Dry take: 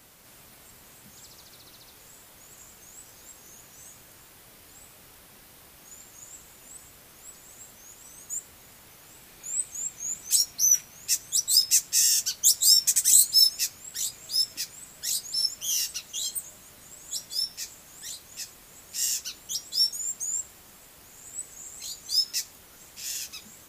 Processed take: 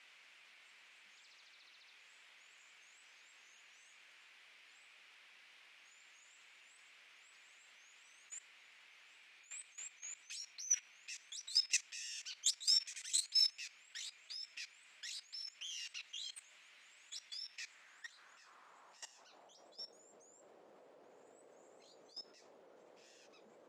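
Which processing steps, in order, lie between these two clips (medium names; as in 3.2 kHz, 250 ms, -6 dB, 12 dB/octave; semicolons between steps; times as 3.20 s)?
band-pass sweep 2.4 kHz -> 510 Hz, 17.48–19.95 s; level held to a coarse grid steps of 17 dB; band-pass 180–7700 Hz; trim +5 dB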